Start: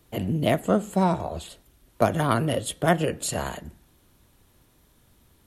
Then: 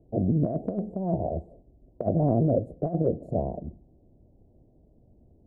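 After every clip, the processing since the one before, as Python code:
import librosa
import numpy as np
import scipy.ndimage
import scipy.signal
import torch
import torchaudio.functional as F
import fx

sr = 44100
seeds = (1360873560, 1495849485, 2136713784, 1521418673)

y = scipy.signal.sosfilt(scipy.signal.ellip(4, 1.0, 50, 690.0, 'lowpass', fs=sr, output='sos'), x)
y = fx.over_compress(y, sr, threshold_db=-25.0, ratio=-0.5)
y = F.gain(torch.from_numpy(y), 1.5).numpy()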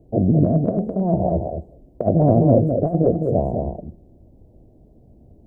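y = x + 10.0 ** (-5.0 / 20.0) * np.pad(x, (int(209 * sr / 1000.0), 0))[:len(x)]
y = F.gain(torch.from_numpy(y), 7.5).numpy()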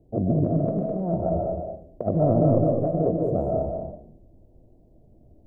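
y = fx.tracing_dist(x, sr, depth_ms=0.031)
y = fx.rev_freeverb(y, sr, rt60_s=0.5, hf_ratio=0.6, predelay_ms=100, drr_db=2.0)
y = F.gain(torch.from_numpy(y), -6.5).numpy()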